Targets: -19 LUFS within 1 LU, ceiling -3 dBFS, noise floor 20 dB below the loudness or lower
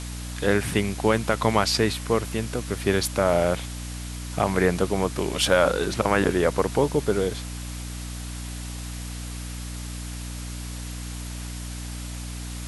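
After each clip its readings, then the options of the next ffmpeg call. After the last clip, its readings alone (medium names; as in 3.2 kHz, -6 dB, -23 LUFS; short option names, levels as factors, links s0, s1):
hum 60 Hz; highest harmonic 300 Hz; hum level -32 dBFS; noise floor -34 dBFS; noise floor target -46 dBFS; loudness -26.0 LUFS; peak level -4.0 dBFS; loudness target -19.0 LUFS
-> -af "bandreject=f=60:t=h:w=6,bandreject=f=120:t=h:w=6,bandreject=f=180:t=h:w=6,bandreject=f=240:t=h:w=6,bandreject=f=300:t=h:w=6"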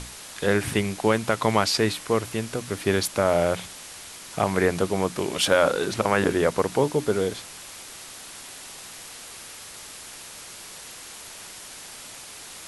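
hum not found; noise floor -42 dBFS; noise floor target -44 dBFS
-> -af "afftdn=nr=6:nf=-42"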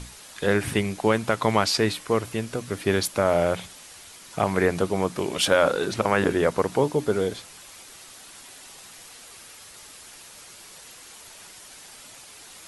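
noise floor -46 dBFS; loudness -24.0 LUFS; peak level -4.0 dBFS; loudness target -19.0 LUFS
-> -af "volume=1.78,alimiter=limit=0.708:level=0:latency=1"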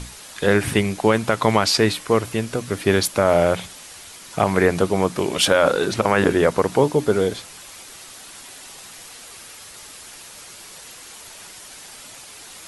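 loudness -19.5 LUFS; peak level -3.0 dBFS; noise floor -41 dBFS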